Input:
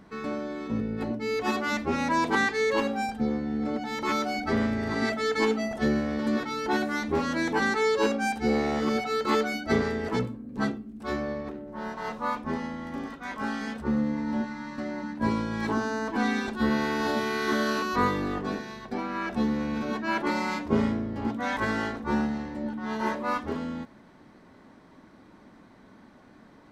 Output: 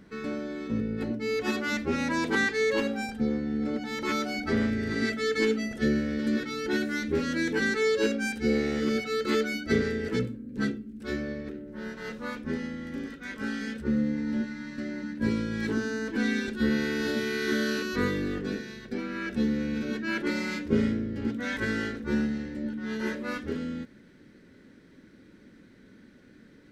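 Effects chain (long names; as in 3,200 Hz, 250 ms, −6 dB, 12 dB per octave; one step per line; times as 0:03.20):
flat-topped bell 870 Hz −8.5 dB 1.1 octaves, from 0:04.69 −15.5 dB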